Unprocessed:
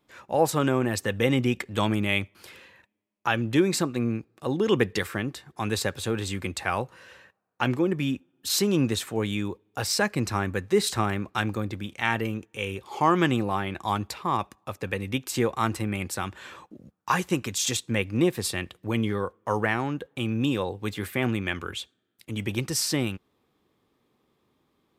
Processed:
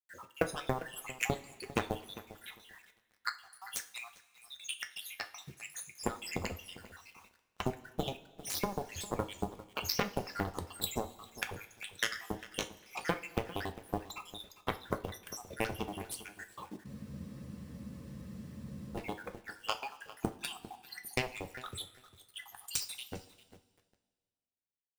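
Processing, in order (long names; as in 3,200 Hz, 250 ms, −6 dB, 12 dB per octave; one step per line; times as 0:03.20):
time-frequency cells dropped at random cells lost 84%
high-shelf EQ 10,000 Hz +4 dB
downward compressor 12 to 1, threshold −33 dBFS, peak gain reduction 15 dB
harmonic generator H 7 −12 dB, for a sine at −19.5 dBFS
on a send: feedback echo with a low-pass in the loop 400 ms, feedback 18%, low-pass 3,000 Hz, level −16 dB
on the sum: log-companded quantiser 6 bits
coupled-rooms reverb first 0.27 s, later 1.8 s, from −18 dB, DRR 6 dB
frozen spectrum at 0:16.88, 2.07 s
level +5 dB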